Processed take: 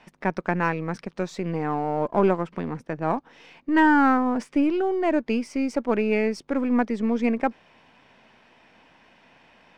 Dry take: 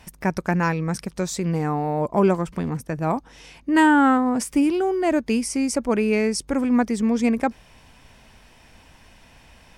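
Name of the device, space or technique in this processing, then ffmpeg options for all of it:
crystal radio: -af "highpass=210,lowpass=3.1k,aeval=exprs='if(lt(val(0),0),0.708*val(0),val(0))':c=same"

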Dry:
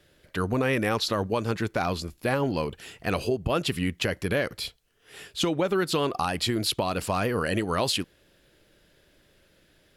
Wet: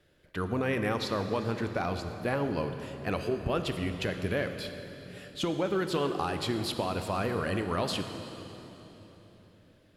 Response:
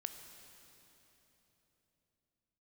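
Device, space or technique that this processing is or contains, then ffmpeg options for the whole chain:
swimming-pool hall: -filter_complex "[1:a]atrim=start_sample=2205[a];[0:a][a]afir=irnorm=-1:irlink=0,highshelf=f=3.8k:g=-7,volume=-1.5dB"

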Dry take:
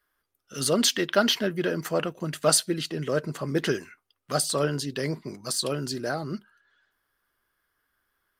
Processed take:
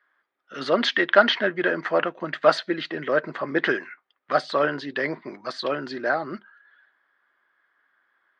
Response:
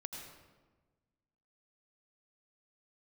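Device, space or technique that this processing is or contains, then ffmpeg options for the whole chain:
phone earpiece: -af "highpass=390,equalizer=f=440:t=q:w=4:g=-6,equalizer=f=1.8k:t=q:w=4:g=5,equalizer=f=2.8k:t=q:w=4:g=-7,lowpass=f=3.2k:w=0.5412,lowpass=f=3.2k:w=1.3066,volume=7.5dB"

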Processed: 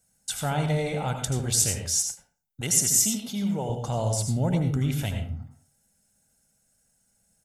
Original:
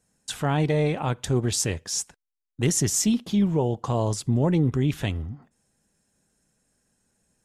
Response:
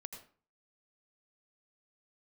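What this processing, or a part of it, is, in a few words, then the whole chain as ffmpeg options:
microphone above a desk: -filter_complex "[0:a]aecho=1:1:1.4:0.51[a];[1:a]atrim=start_sample=2205[b];[a][b]afir=irnorm=-1:irlink=0,asettb=1/sr,asplit=3[c][d][e];[c]atrim=end=2.614[f];[d]atrim=start=2.61:end=3.7,asetpts=PTS-STARTPTS,afade=t=in:d=0.004:c=qsin,afade=t=out:st=1.086:d=0.004:c=qsin,highpass=f=270:p=1[g];[e]atrim=start=3.696[h];[f][g]acrossfade=d=0.004:c1=hsin:c2=qsin[i];[i][h]acrossfade=d=0.004:c1=qsin:c2=hsin,aemphasis=mode=production:type=50kf"

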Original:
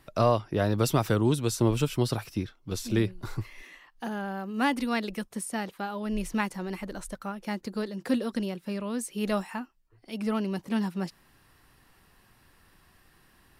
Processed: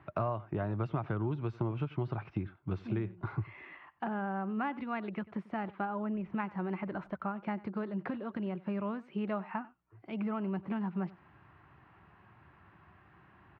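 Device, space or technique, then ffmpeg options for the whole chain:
bass amplifier: -filter_complex "[0:a]acompressor=threshold=-34dB:ratio=5,highpass=f=74:w=0.5412,highpass=f=74:w=1.3066,equalizer=f=250:t=q:w=4:g=-8,equalizer=f=490:t=q:w=4:g=-10,equalizer=f=1.8k:t=q:w=4:g=-6,lowpass=f=2.1k:w=0.5412,lowpass=f=2.1k:w=1.3066,asettb=1/sr,asplit=3[a][b][c];[a]atrim=end=5.854[d];[b]atrim=start=5.85:end=6.34,asetpts=PTS-STARTPTS,afade=t=in:d=0.004:c=qsin,afade=t=out:st=0.486:d=0.004:c=qsin,lowpass=f=1.9k:p=1[e];[c]atrim=start=6.336[f];[d][e]acrossfade=d=0.004:c1=hsin:c2=qsin[g];[g][f]acrossfade=d=0.004:c1=qsin:c2=hsin,aecho=1:1:94:0.0944,volume=5dB"

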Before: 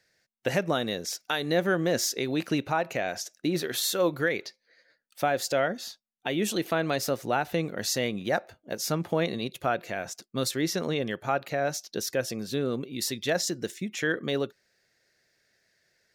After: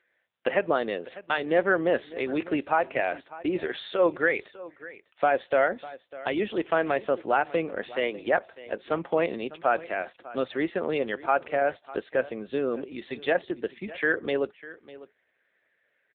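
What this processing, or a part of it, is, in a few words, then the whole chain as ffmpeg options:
satellite phone: -filter_complex "[0:a]asettb=1/sr,asplit=3[a][b][c];[a]atrim=end=7.824[d];[b]atrim=start=7.82:end=8.27,asetpts=PTS-STARTPTS,afade=t=in:d=0.004:c=qsin,afade=t=out:st=0.446:d=0.004:c=qsin,highpass=f=250:w=0.5412,highpass=f=250:w=1.3066[e];[c]atrim=start=8.266[f];[d][e]acrossfade=d=0.004:c1=hsin:c2=qsin[g];[g][f]acrossfade=d=0.004:c1=qsin:c2=hsin,highpass=340,lowpass=3k,aecho=1:1:600:0.126,volume=4.5dB" -ar 8000 -c:a libopencore_amrnb -b:a 6700

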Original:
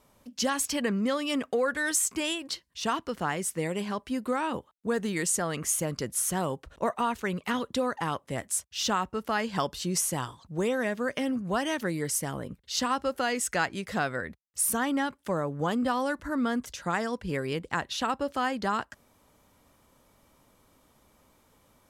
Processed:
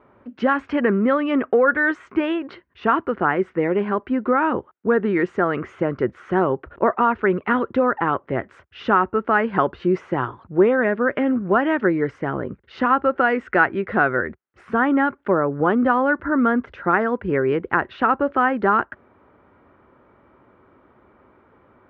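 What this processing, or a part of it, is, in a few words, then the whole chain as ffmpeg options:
bass cabinet: -af "highpass=71,equalizer=f=160:t=q:w=4:g=-5,equalizer=f=370:t=q:w=4:g=9,equalizer=f=1.4k:t=q:w=4:g=6,lowpass=f=2.1k:w=0.5412,lowpass=f=2.1k:w=1.3066,volume=8.5dB"

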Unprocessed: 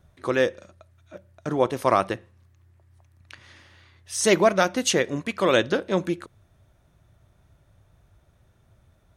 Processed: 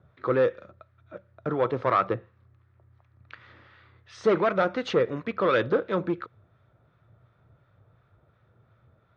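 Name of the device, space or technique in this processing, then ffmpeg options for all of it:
guitar amplifier with harmonic tremolo: -filter_complex "[0:a]acrossover=split=970[a][b];[a]aeval=exprs='val(0)*(1-0.5/2+0.5/2*cos(2*PI*2.8*n/s))':c=same[c];[b]aeval=exprs='val(0)*(1-0.5/2-0.5/2*cos(2*PI*2.8*n/s))':c=same[d];[c][d]amix=inputs=2:normalize=0,asoftclip=type=tanh:threshold=-19dB,highpass=93,equalizer=f=120:t=q:w=4:g=7,equalizer=f=470:t=q:w=4:g=7,equalizer=f=1.3k:t=q:w=4:g=9,equalizer=f=2.9k:t=q:w=4:g=-5,lowpass=f=3.6k:w=0.5412,lowpass=f=3.6k:w=1.3066"

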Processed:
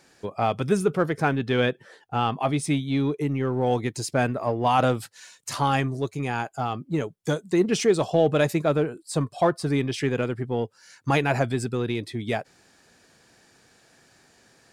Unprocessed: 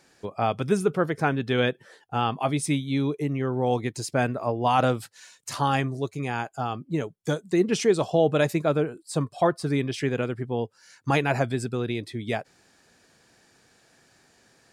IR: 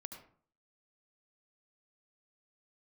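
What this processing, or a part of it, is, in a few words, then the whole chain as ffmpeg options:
parallel distortion: -filter_complex "[0:a]asplit=2[a][b];[b]asoftclip=type=hard:threshold=-27.5dB,volume=-11dB[c];[a][c]amix=inputs=2:normalize=0,asettb=1/sr,asplit=3[d][e][f];[d]atrim=end=1.384[g];[e]atrim=start=1.38:end=3.21,asetpts=PTS-STARTPTS,afade=t=in:d=0.004:c=qsin,afade=t=out:st=1.826:d=0.004:c=qsin,highshelf=f=6.6k:g=-6[h];[f]atrim=start=3.206[i];[g][h]acrossfade=d=0.004:c1=hsin:c2=qsin[j];[j][i]acrossfade=d=0.004:c1=qsin:c2=hsin"

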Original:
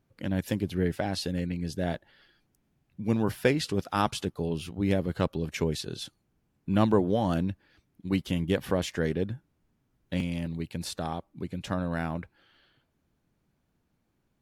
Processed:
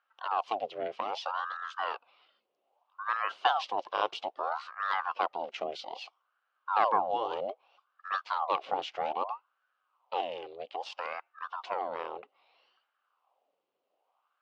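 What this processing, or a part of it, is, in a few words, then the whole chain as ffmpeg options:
voice changer toy: -af "aeval=exprs='val(0)*sin(2*PI*860*n/s+860*0.75/0.62*sin(2*PI*0.62*n/s))':c=same,highpass=500,equalizer=f=530:t=q:w=4:g=6,equalizer=f=760:t=q:w=4:g=8,equalizer=f=1.1k:t=q:w=4:g=5,equalizer=f=1.8k:t=q:w=4:g=-6,equalizer=f=2.9k:t=q:w=4:g=8,lowpass=f=4.9k:w=0.5412,lowpass=f=4.9k:w=1.3066,volume=-4dB"

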